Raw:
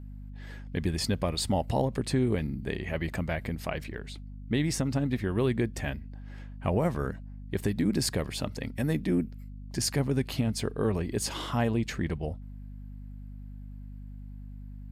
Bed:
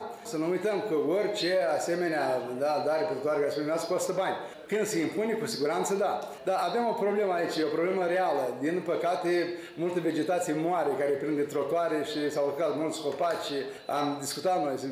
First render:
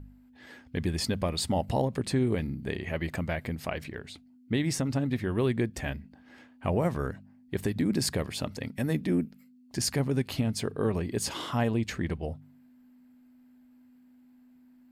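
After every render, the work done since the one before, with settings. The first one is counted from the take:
hum removal 50 Hz, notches 4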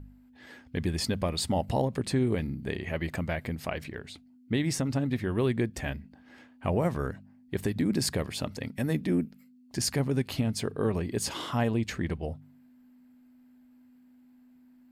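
no processing that can be heard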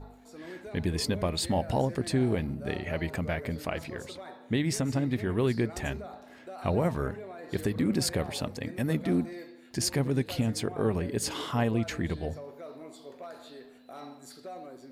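mix in bed −15.5 dB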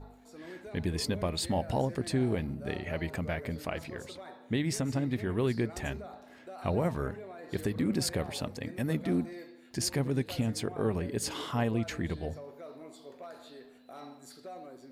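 level −2.5 dB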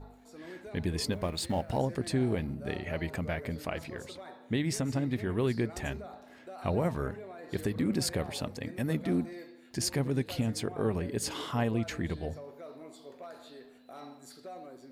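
0:01.12–0:01.78: mu-law and A-law mismatch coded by A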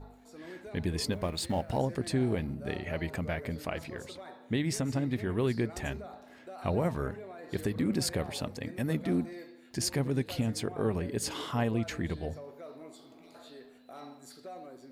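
0:13.01–0:13.32: healed spectral selection 290–1,900 Hz before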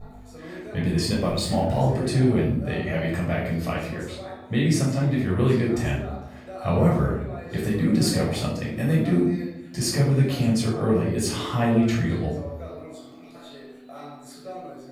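rectangular room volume 1,000 cubic metres, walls furnished, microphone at 6.2 metres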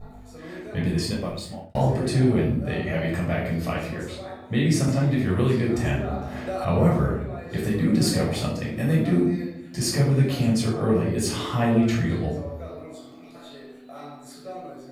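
0:00.84–0:01.75: fade out
0:04.88–0:06.65: multiband upward and downward compressor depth 70%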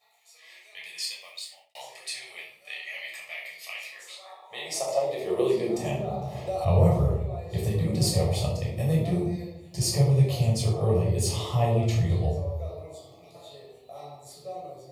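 phaser with its sweep stopped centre 630 Hz, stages 4
high-pass filter sweep 2,100 Hz → 84 Hz, 0:03.87–0:06.68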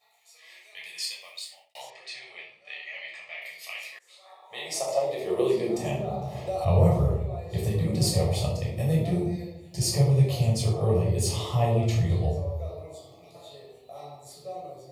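0:01.90–0:03.42: high-frequency loss of the air 130 metres
0:03.99–0:04.58: fade in, from −23 dB
0:08.87–0:09.88: notch filter 1,100 Hz, Q 8

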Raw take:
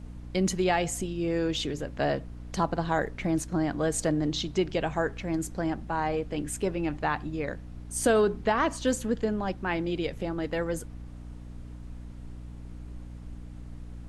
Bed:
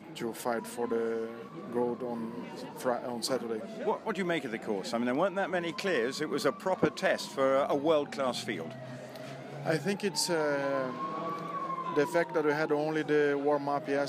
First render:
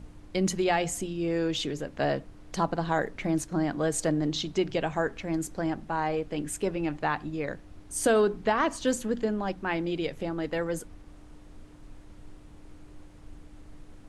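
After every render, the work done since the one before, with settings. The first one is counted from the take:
mains-hum notches 60/120/180/240 Hz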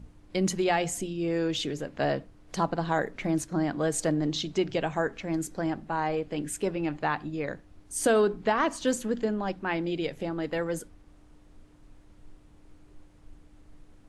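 noise reduction from a noise print 6 dB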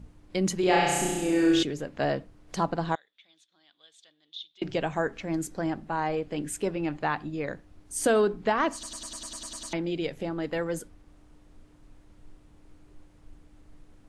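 0:00.60–0:01.63: flutter between parallel walls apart 5.7 metres, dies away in 1.3 s
0:02.95–0:04.62: resonant band-pass 3,500 Hz, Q 14
0:08.73: stutter in place 0.10 s, 10 plays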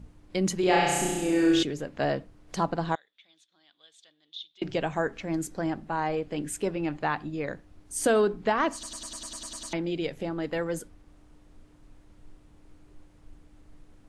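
no processing that can be heard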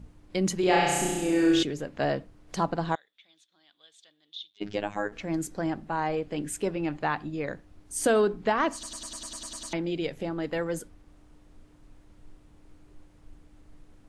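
0:04.50–0:05.12: phases set to zero 103 Hz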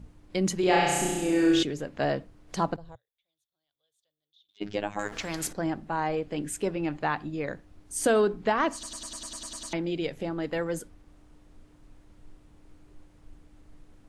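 0:02.76–0:04.49: drawn EQ curve 120 Hz 0 dB, 190 Hz −25 dB, 290 Hz −26 dB, 520 Hz −13 dB, 770 Hz −22 dB, 1,800 Hz −27 dB, 8,000 Hz −18 dB, 12,000 Hz −3 dB
0:04.99–0:05.53: every bin compressed towards the loudest bin 2 to 1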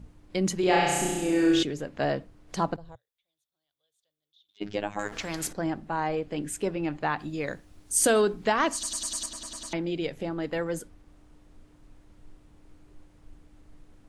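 0:07.19–0:09.26: high-shelf EQ 3,400 Hz +10 dB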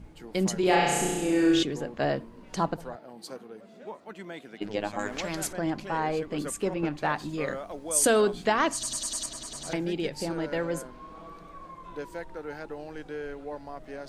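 mix in bed −10 dB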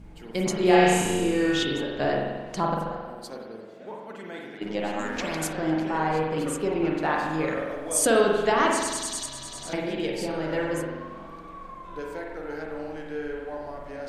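spring reverb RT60 1.3 s, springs 44 ms, chirp 50 ms, DRR −1 dB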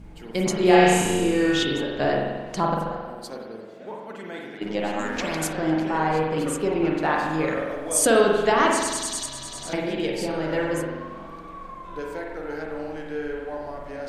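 level +2.5 dB

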